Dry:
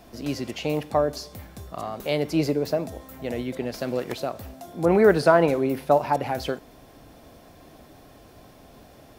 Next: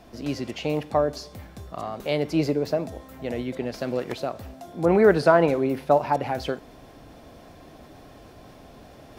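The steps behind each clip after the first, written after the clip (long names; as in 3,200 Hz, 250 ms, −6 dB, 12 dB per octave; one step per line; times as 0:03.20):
high-shelf EQ 9,000 Hz −10 dB
reversed playback
upward compression, threshold −41 dBFS
reversed playback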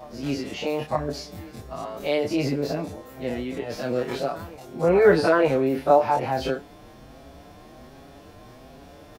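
every bin's largest magnitude spread in time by 60 ms
backwards echo 925 ms −22.5 dB
barber-pole flanger 6.1 ms +1.3 Hz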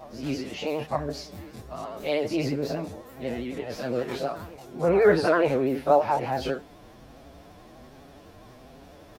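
pitch vibrato 12 Hz 73 cents
level −2.5 dB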